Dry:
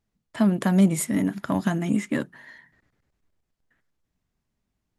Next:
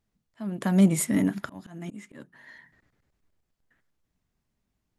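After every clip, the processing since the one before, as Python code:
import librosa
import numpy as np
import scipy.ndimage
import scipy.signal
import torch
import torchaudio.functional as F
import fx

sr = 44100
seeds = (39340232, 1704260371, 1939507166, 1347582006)

y = fx.auto_swell(x, sr, attack_ms=519.0)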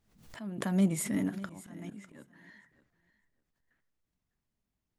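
y = fx.echo_feedback(x, sr, ms=601, feedback_pct=16, wet_db=-18.0)
y = fx.pre_swell(y, sr, db_per_s=87.0)
y = y * librosa.db_to_amplitude(-7.5)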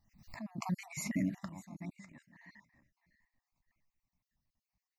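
y = fx.spec_dropout(x, sr, seeds[0], share_pct=40)
y = fx.fixed_phaser(y, sr, hz=2200.0, stages=8)
y = y * librosa.db_to_amplitude(2.5)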